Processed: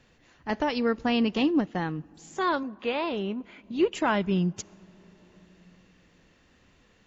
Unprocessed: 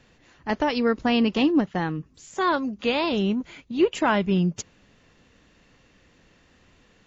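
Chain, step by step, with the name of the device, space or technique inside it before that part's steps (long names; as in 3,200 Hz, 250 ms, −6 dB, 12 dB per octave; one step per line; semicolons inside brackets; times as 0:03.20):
compressed reverb return (on a send at −12 dB: convolution reverb RT60 2.5 s, pre-delay 35 ms + downward compressor 5 to 1, threshold −36 dBFS, peak gain reduction 18 dB)
0:02.63–0:03.64: on the sum: bass and treble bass −8 dB, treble −14 dB
level −3.5 dB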